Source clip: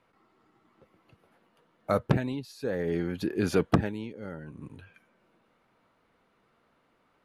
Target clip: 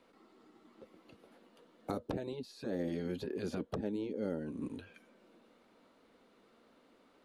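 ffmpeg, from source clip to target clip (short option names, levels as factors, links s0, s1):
-filter_complex "[0:a]equalizer=f=125:t=o:w=1:g=-8,equalizer=f=250:t=o:w=1:g=10,equalizer=f=500:t=o:w=1:g=6,equalizer=f=4000:t=o:w=1:g=7,equalizer=f=8000:t=o:w=1:g=6,acrossover=split=960|2900[s0][s1][s2];[s0]acompressor=threshold=0.0447:ratio=4[s3];[s1]acompressor=threshold=0.00158:ratio=4[s4];[s2]acompressor=threshold=0.00141:ratio=4[s5];[s3][s4][s5]amix=inputs=3:normalize=0,afftfilt=real='re*lt(hypot(re,im),0.224)':imag='im*lt(hypot(re,im),0.224)':win_size=1024:overlap=0.75,volume=0.794"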